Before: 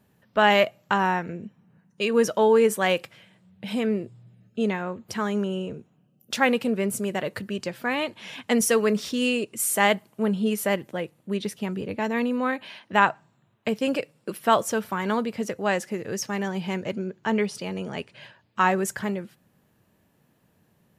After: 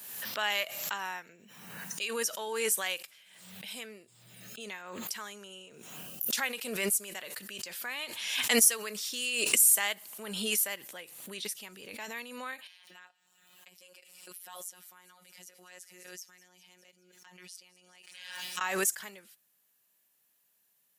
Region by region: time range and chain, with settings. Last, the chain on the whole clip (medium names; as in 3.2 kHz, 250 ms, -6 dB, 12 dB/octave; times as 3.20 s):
12.67–18.61 s: compression 2:1, threshold -51 dBFS + robot voice 181 Hz + feedback echo behind a high-pass 201 ms, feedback 60%, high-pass 2.9 kHz, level -17.5 dB
whole clip: differentiator; swell ahead of each attack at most 42 dB/s; trim +2 dB